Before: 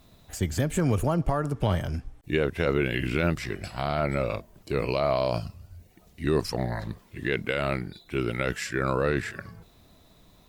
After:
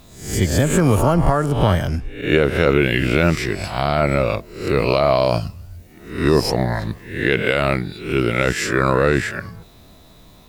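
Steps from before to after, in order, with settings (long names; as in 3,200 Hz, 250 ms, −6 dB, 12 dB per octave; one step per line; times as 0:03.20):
peak hold with a rise ahead of every peak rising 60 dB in 0.54 s
level +8 dB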